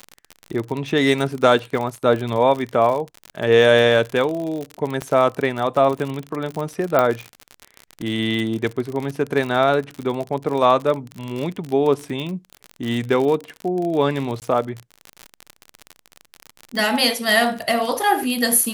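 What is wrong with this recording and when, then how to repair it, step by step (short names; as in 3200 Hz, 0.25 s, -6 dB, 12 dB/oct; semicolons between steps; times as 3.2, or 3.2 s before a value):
crackle 51/s -24 dBFS
5.02 pop -12 dBFS
6.99 pop -5 dBFS
14.4–14.42 gap 18 ms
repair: de-click; interpolate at 14.4, 18 ms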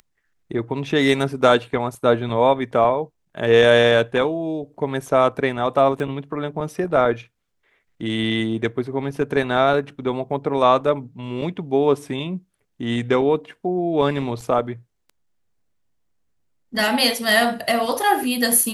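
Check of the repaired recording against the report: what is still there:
none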